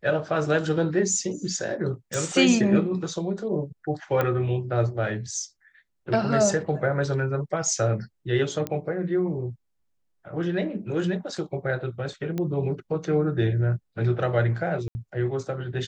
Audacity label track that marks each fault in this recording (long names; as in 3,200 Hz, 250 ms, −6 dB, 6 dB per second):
2.140000	2.140000	click
4.210000	4.210000	click −12 dBFS
8.670000	8.670000	click −14 dBFS
12.380000	12.380000	click −17 dBFS
14.880000	14.950000	drop-out 70 ms